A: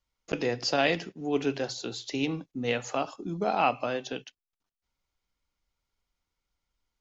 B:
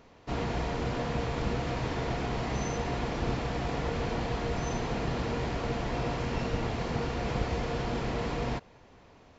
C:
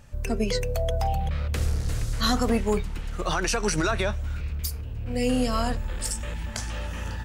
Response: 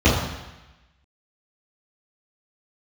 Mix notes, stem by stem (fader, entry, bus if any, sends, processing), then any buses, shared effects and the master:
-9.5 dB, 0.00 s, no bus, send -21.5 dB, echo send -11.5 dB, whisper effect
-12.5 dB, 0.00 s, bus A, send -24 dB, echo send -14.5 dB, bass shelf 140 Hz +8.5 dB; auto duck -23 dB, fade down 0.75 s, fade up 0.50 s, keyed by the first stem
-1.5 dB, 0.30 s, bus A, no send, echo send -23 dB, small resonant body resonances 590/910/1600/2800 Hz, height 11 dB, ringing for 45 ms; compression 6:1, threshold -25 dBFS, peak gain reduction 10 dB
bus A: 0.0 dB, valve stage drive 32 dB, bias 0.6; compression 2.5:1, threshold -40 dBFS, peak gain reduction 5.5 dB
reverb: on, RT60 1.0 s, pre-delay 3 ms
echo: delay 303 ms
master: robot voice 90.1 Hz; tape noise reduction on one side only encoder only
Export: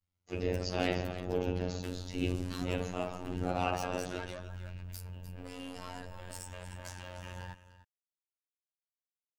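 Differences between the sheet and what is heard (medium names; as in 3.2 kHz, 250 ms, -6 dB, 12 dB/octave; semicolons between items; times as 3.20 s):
stem B: muted; master: missing tape noise reduction on one side only encoder only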